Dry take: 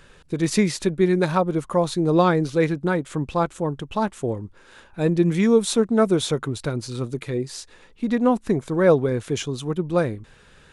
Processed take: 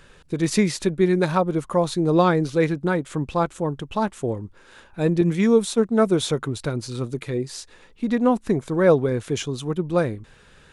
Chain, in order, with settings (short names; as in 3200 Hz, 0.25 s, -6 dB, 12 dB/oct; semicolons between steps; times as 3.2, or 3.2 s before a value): 5.21–6.17 expander -19 dBFS